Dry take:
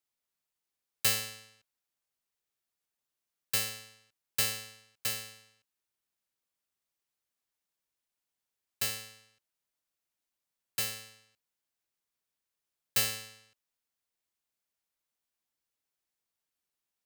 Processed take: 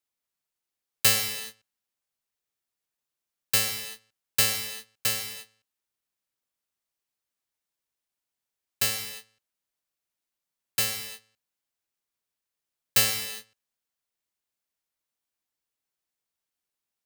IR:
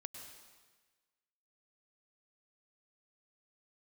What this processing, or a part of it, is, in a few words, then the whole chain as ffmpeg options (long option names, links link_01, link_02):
keyed gated reverb: -filter_complex "[0:a]asplit=3[link_01][link_02][link_03];[1:a]atrim=start_sample=2205[link_04];[link_02][link_04]afir=irnorm=-1:irlink=0[link_05];[link_03]apad=whole_len=752139[link_06];[link_05][link_06]sidechaingate=range=-44dB:threshold=-56dB:ratio=16:detection=peak,volume=7dB[link_07];[link_01][link_07]amix=inputs=2:normalize=0"